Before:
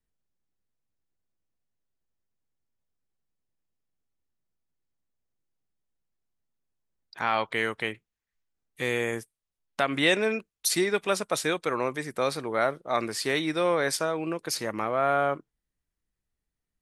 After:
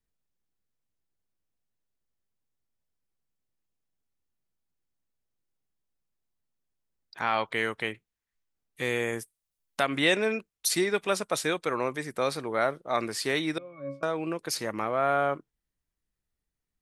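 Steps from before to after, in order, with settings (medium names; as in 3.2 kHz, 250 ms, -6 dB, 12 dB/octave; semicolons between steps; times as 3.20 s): 9.19–9.87 s: treble shelf 6 kHz +9 dB; 13.58–14.03 s: pitch-class resonator C#, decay 0.29 s; trim -1 dB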